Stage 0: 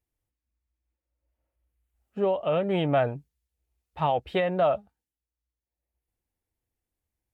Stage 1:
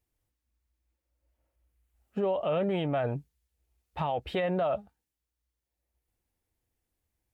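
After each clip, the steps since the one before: limiter -25 dBFS, peak gain reduction 11 dB; gain +3.5 dB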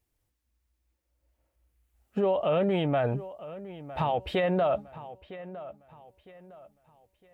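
dark delay 0.958 s, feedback 33%, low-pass 3100 Hz, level -15.5 dB; gain +3 dB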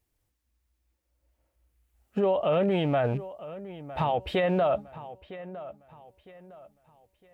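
rattling part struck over -30 dBFS, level -41 dBFS; gain +1 dB

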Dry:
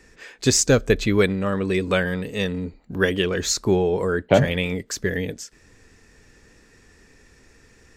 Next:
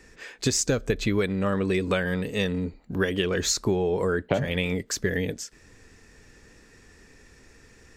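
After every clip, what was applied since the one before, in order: compressor 12:1, threshold -20 dBFS, peak gain reduction 11 dB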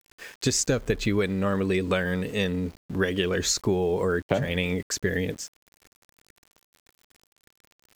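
sample gate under -44 dBFS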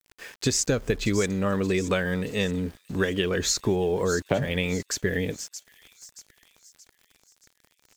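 thin delay 0.626 s, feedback 46%, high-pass 5300 Hz, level -8 dB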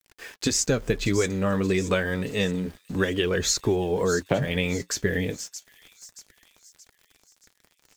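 flange 0.29 Hz, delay 1.4 ms, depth 8.6 ms, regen -59%; gain +5 dB

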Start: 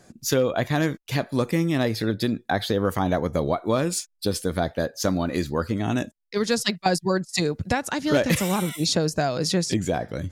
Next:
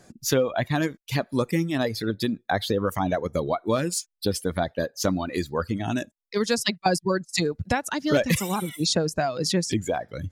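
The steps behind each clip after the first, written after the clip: reverb removal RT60 1.7 s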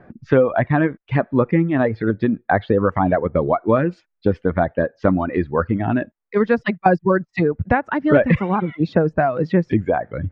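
LPF 2000 Hz 24 dB/oct; gain +7.5 dB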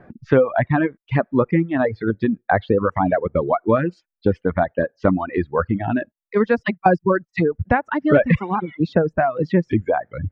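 reverb removal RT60 1.8 s

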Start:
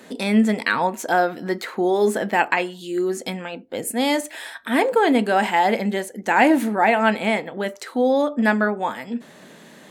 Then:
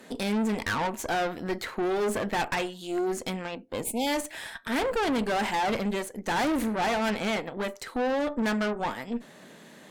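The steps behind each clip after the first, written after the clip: tube stage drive 24 dB, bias 0.75; spectral delete 3.84–4.07, 990–2100 Hz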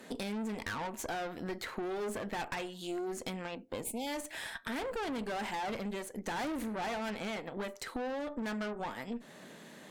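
compressor, threshold -33 dBFS, peak gain reduction 9 dB; gain -2 dB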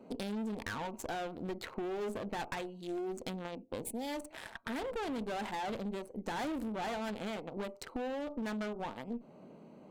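Wiener smoothing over 25 samples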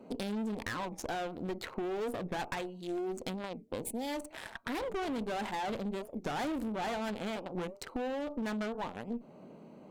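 record warp 45 rpm, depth 250 cents; gain +2 dB

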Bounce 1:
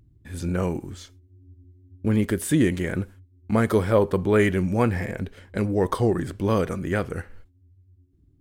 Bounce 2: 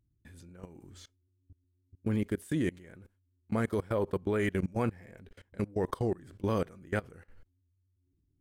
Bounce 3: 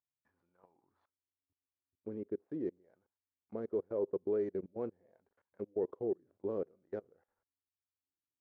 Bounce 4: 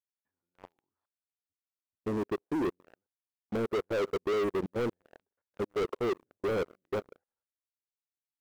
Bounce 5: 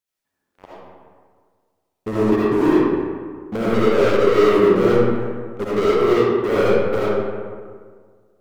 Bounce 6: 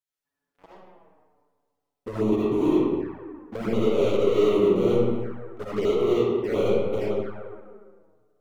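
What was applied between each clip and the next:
level quantiser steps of 23 dB; gain -5.5 dB
median filter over 15 samples; auto-wah 420–1100 Hz, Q 2.3, down, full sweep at -31 dBFS; upward expander 1.5:1, over -46 dBFS
sample leveller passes 5; gain -2 dB
digital reverb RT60 1.8 s, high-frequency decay 0.5×, pre-delay 30 ms, DRR -8.5 dB; gain +6.5 dB
envelope flanger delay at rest 7 ms, full sweep at -15 dBFS; gain -5 dB

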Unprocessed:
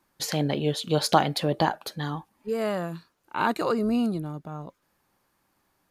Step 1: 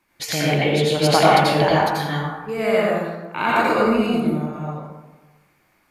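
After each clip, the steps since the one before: bell 2300 Hz +11 dB 0.57 oct; plate-style reverb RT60 1.2 s, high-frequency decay 0.45×, pre-delay 75 ms, DRR -6.5 dB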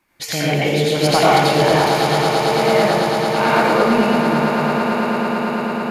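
in parallel at -11 dB: wavefolder -10 dBFS; on the sum: swelling echo 0.111 s, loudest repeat 8, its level -11.5 dB; gain -1 dB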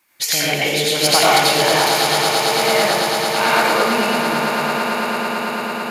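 tilt +3 dB/oct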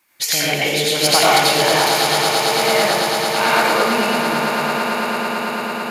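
nothing audible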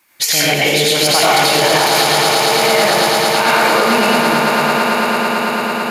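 limiter -8 dBFS, peak gain reduction 6.5 dB; gain +5.5 dB

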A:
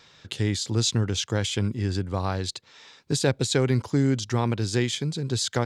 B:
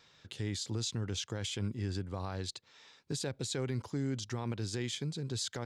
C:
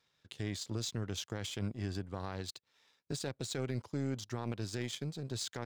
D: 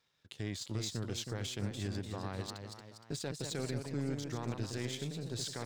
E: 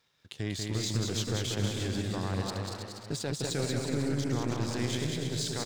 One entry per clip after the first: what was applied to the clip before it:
limiter -17 dBFS, peak gain reduction 8 dB; gain -9 dB
power-law curve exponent 1.4
echoes that change speed 0.373 s, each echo +1 st, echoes 3, each echo -6 dB; gain -1 dB
bouncing-ball echo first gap 0.19 s, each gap 0.7×, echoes 5; gain +5 dB

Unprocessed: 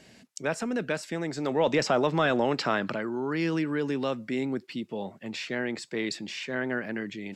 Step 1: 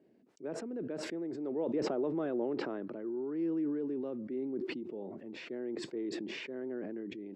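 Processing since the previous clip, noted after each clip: band-pass 350 Hz, Q 2.8; sustainer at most 21 dB/s; gain -3.5 dB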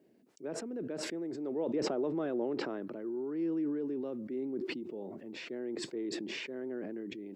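high shelf 4300 Hz +8.5 dB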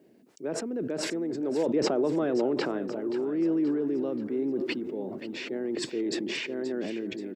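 feedback echo 0.529 s, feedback 49%, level -13 dB; gain +7 dB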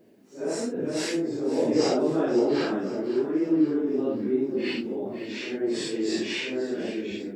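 phase scrambler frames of 0.2 s; gain +3 dB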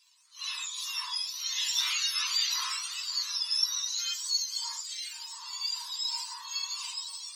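spectrum mirrored in octaves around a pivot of 1300 Hz; brick-wall FIR high-pass 900 Hz

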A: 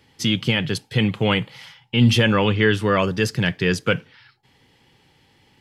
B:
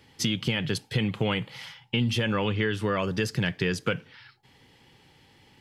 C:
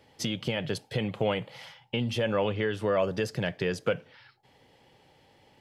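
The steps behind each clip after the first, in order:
compressor 6:1, threshold -23 dBFS, peak gain reduction 12 dB
bell 610 Hz +12.5 dB 0.9 oct; gain -5.5 dB

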